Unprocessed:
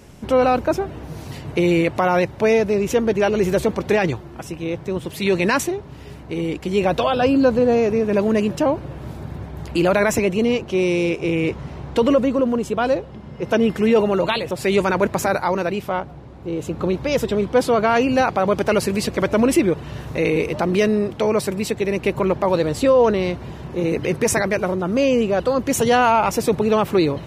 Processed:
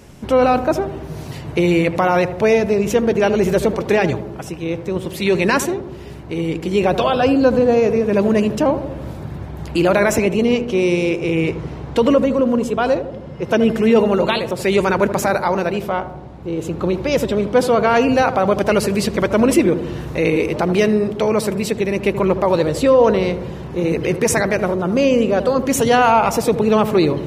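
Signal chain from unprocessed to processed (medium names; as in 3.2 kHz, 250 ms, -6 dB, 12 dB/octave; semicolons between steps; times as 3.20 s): filtered feedback delay 79 ms, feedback 70%, low-pass 970 Hz, level -10 dB; trim +2 dB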